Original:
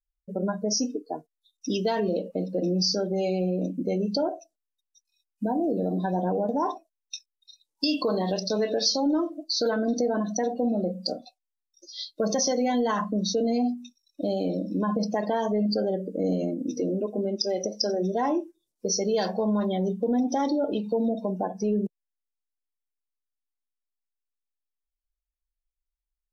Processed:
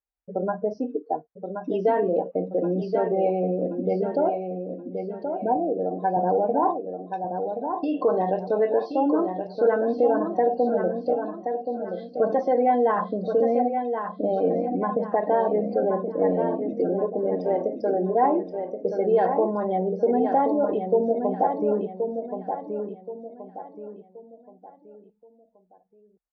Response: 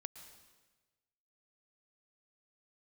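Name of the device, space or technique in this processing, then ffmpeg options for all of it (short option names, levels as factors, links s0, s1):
bass cabinet: -filter_complex "[0:a]asettb=1/sr,asplit=3[s0][s1][s2];[s0]atrim=end=5.564[s3];[s1]atrim=start=5.56:end=6.17,asetpts=PTS-STARTPTS,afade=t=in:d=0.004:c=qsin,afade=t=out:st=0.606:d=0.004:c=qsin,highpass=f=350:p=1[s4];[s2]atrim=start=6.166[s5];[s3][s4]acrossfade=d=0.004:c1=hsin:c2=qsin[s6];[s6][s5]acrossfade=d=0.004:c1=qsin:c2=hsin,highpass=73,equalizer=f=210:t=q:w=4:g=-7,equalizer=f=470:t=q:w=4:g=5,equalizer=f=770:t=q:w=4:g=8,lowpass=f=2000:w=0.5412,lowpass=f=2000:w=1.3066,aecho=1:1:1076|2152|3228|4304:0.473|0.17|0.0613|0.0221,volume=1.12"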